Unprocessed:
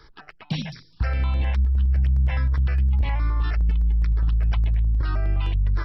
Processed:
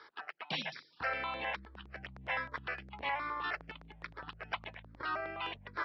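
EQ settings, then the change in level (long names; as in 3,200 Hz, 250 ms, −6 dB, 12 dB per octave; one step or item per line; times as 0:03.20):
band-pass filter 570–3,300 Hz
+1.0 dB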